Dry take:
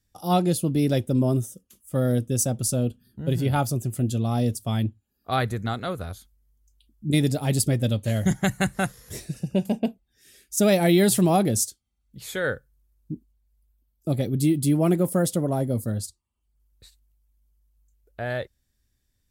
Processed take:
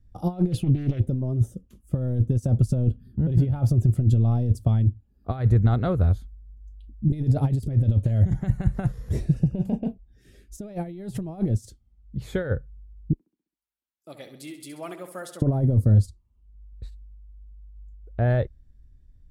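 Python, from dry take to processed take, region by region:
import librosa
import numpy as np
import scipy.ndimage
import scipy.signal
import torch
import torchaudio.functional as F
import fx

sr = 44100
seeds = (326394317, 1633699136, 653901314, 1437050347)

y = fx.chain(x, sr, fx.peak_eq(hz=2700.0, db=12.5, octaves=1.0),
    fx.doppler_dist(depth_ms=0.27), at=(0.52, 1.0))
y = fx.chain(y, sr, fx.highpass(hz=1500.0, slope=12),
    fx.echo_feedback(ms=66, feedback_pct=54, wet_db=-10), at=(13.13, 15.42))
y = fx.dynamic_eq(y, sr, hz=220.0, q=1.4, threshold_db=-36.0, ratio=4.0, max_db=-5)
y = fx.over_compress(y, sr, threshold_db=-28.0, ratio=-0.5)
y = fx.tilt_eq(y, sr, slope=-4.5)
y = y * librosa.db_to_amplitude(-3.5)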